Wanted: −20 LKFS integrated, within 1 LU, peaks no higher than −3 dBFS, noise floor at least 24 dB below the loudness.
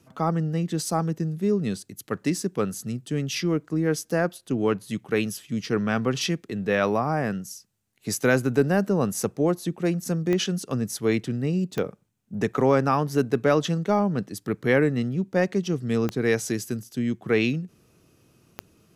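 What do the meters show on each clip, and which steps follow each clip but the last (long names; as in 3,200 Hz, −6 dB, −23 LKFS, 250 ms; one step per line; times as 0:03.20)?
number of clicks 4; integrated loudness −25.5 LKFS; sample peak −7.5 dBFS; target loudness −20.0 LKFS
→ click removal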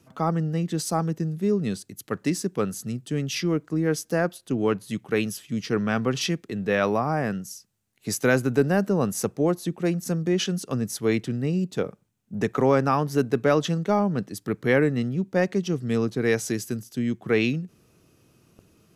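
number of clicks 0; integrated loudness −25.5 LKFS; sample peak −7.5 dBFS; target loudness −20.0 LKFS
→ level +5.5 dB
brickwall limiter −3 dBFS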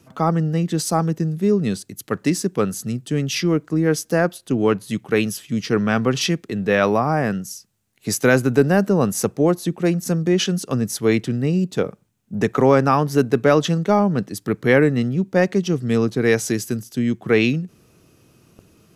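integrated loudness −20.0 LKFS; sample peak −3.0 dBFS; background noise floor −57 dBFS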